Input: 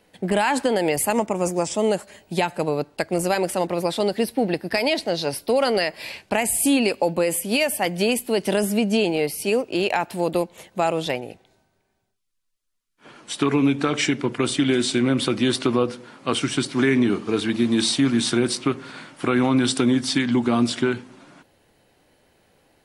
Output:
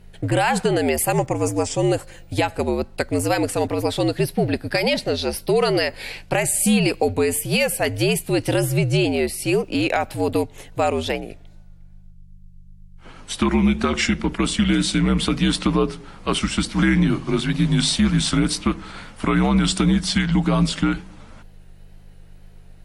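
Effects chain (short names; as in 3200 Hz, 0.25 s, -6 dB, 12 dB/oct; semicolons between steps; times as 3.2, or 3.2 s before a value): hum 50 Hz, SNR 21 dB; frequency shift -71 Hz; wow and flutter 57 cents; gain +1.5 dB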